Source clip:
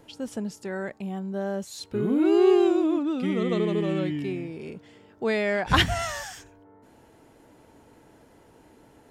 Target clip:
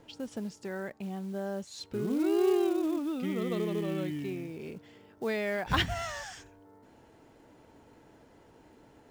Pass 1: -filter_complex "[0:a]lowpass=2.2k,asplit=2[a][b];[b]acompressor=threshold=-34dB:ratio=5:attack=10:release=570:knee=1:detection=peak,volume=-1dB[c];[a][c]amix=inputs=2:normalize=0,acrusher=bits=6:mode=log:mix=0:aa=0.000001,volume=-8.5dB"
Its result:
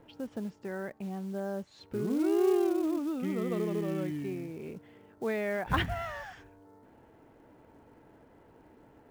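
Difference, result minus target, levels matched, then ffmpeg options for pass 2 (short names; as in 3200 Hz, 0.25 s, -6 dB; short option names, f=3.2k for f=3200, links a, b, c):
8000 Hz band -5.0 dB
-filter_complex "[0:a]lowpass=7.1k,asplit=2[a][b];[b]acompressor=threshold=-34dB:ratio=5:attack=10:release=570:knee=1:detection=peak,volume=-1dB[c];[a][c]amix=inputs=2:normalize=0,acrusher=bits=6:mode=log:mix=0:aa=0.000001,volume=-8.5dB"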